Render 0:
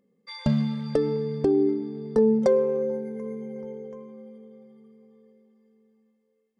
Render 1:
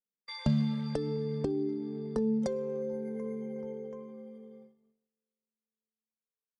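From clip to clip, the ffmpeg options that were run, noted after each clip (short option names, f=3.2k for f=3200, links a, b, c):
-filter_complex "[0:a]agate=range=-35dB:threshold=-49dB:ratio=16:detection=peak,acrossover=split=210|3000[a][b][c];[b]acompressor=threshold=-31dB:ratio=6[d];[a][d][c]amix=inputs=3:normalize=0,volume=-2.5dB"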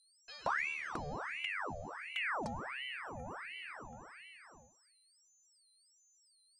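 -af "aeval=exprs='val(0)+0.00112*sin(2*PI*6600*n/s)':c=same,aeval=exprs='val(0)*sin(2*PI*1400*n/s+1400*0.8/1.4*sin(2*PI*1.4*n/s))':c=same,volume=-5.5dB"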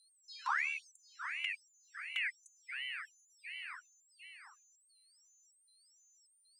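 -af "afftfilt=real='re*gte(b*sr/1024,640*pow(6300/640,0.5+0.5*sin(2*PI*1.3*pts/sr)))':imag='im*gte(b*sr/1024,640*pow(6300/640,0.5+0.5*sin(2*PI*1.3*pts/sr)))':win_size=1024:overlap=0.75,volume=1.5dB"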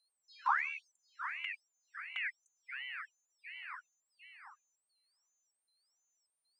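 -af "bandpass=f=780:t=q:w=1:csg=0,volume=6.5dB"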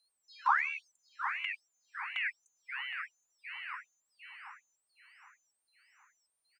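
-filter_complex "[0:a]asplit=2[a][b];[b]adelay=766,lowpass=f=3.7k:p=1,volume=-12dB,asplit=2[c][d];[d]adelay=766,lowpass=f=3.7k:p=1,volume=0.5,asplit=2[e][f];[f]adelay=766,lowpass=f=3.7k:p=1,volume=0.5,asplit=2[g][h];[h]adelay=766,lowpass=f=3.7k:p=1,volume=0.5,asplit=2[i][j];[j]adelay=766,lowpass=f=3.7k:p=1,volume=0.5[k];[a][c][e][g][i][k]amix=inputs=6:normalize=0,volume=3.5dB"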